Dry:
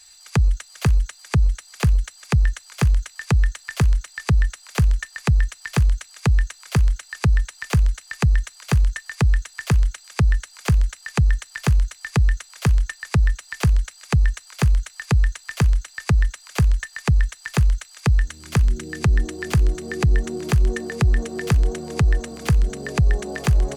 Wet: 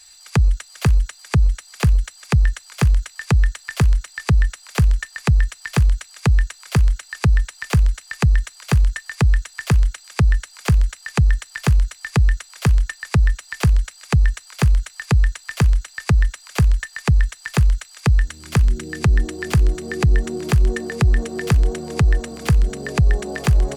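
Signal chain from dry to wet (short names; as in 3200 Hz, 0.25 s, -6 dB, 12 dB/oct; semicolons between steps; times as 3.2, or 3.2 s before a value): notch 6300 Hz, Q 22; gain +2 dB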